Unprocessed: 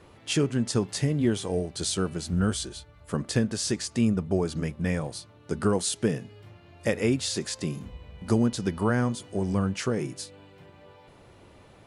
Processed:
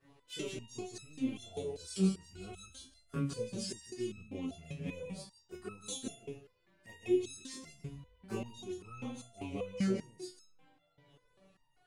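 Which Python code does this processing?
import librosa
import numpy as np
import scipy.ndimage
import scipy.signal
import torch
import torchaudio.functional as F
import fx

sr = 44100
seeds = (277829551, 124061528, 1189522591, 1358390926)

p1 = fx.rattle_buzz(x, sr, strikes_db=-24.0, level_db=-28.0)
p2 = fx.env_flanger(p1, sr, rest_ms=8.3, full_db=-24.5)
p3 = fx.backlash(p2, sr, play_db=-37.0)
p4 = p2 + F.gain(torch.from_numpy(p3), -11.0).numpy()
p5 = fx.chorus_voices(p4, sr, voices=2, hz=0.7, base_ms=25, depth_ms=1.7, mix_pct=60)
p6 = p5 + fx.echo_single(p5, sr, ms=160, db=-8.0, dry=0)
p7 = fx.resonator_held(p6, sr, hz=5.1, low_hz=140.0, high_hz=1300.0)
y = F.gain(torch.from_numpy(p7), 5.0).numpy()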